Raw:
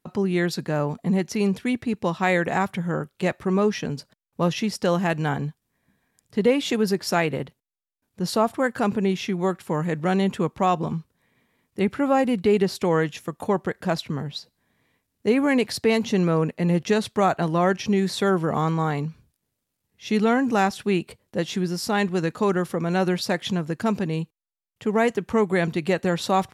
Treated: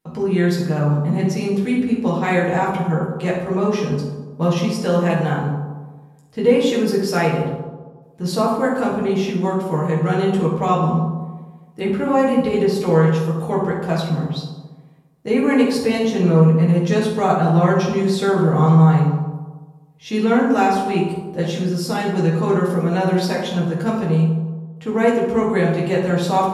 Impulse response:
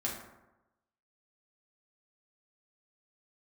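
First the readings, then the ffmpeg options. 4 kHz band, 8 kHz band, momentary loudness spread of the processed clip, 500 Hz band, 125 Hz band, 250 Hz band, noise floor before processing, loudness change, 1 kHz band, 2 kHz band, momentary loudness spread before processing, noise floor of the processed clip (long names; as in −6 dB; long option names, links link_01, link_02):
+1.5 dB, +1.0 dB, 9 LU, +5.0 dB, +9.5 dB, +5.5 dB, −80 dBFS, +5.0 dB, +4.5 dB, +1.5 dB, 9 LU, −45 dBFS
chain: -filter_complex "[1:a]atrim=start_sample=2205,asetrate=30429,aresample=44100[link_01];[0:a][link_01]afir=irnorm=-1:irlink=0,volume=-3dB"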